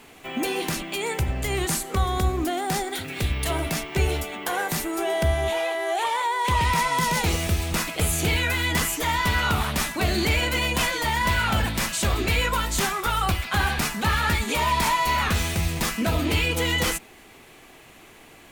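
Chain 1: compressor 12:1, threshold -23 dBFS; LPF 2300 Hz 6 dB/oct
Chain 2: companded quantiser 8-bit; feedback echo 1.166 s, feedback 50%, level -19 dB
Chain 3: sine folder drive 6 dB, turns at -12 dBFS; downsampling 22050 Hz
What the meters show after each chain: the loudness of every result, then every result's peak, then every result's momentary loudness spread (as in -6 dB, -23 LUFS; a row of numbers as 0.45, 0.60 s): -29.0, -24.0, -16.5 LUFS; -15.5, -11.5, -9.5 dBFS; 3, 6, 4 LU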